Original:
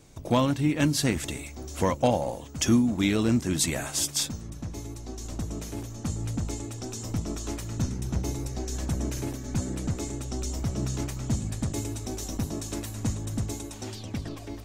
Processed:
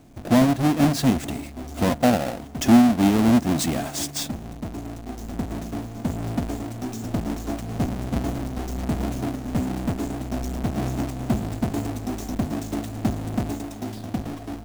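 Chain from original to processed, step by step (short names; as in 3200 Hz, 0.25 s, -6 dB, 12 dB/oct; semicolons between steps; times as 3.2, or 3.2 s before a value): half-waves squared off; small resonant body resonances 240/690 Hz, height 10 dB, ringing for 25 ms; gain -4.5 dB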